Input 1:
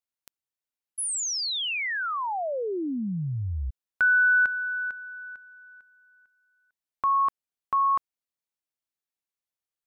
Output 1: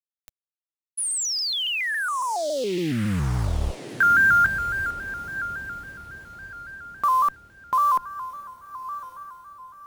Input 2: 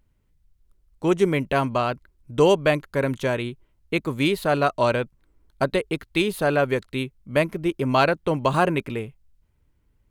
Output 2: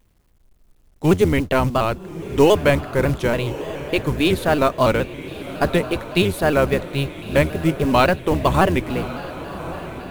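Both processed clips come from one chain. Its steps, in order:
sub-octave generator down 1 octave, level −1 dB
log-companded quantiser 6 bits
on a send: feedback delay with all-pass diffusion 1,154 ms, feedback 41%, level −13 dB
on the sum: pitch modulation by a square or saw wave square 3.6 Hz, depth 100 cents
level +3 dB

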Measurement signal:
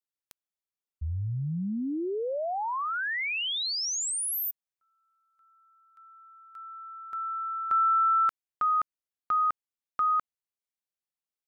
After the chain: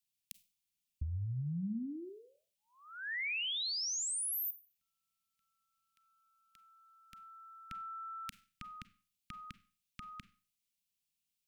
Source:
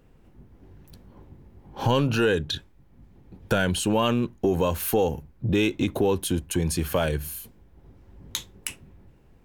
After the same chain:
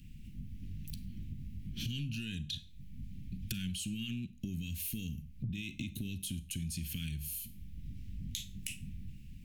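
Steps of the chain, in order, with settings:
Chebyshev band-stop filter 220–2,500 Hz, order 3
brickwall limiter −22.5 dBFS
downward compressor 6 to 1, threshold −45 dBFS
four-comb reverb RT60 0.39 s, combs from 32 ms, DRR 14.5 dB
level +7.5 dB

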